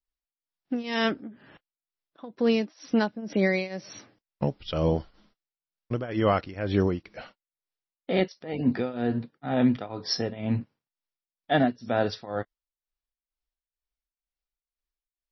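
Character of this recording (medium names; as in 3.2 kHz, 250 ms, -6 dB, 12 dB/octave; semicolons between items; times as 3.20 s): tremolo triangle 2.1 Hz, depth 90%; MP3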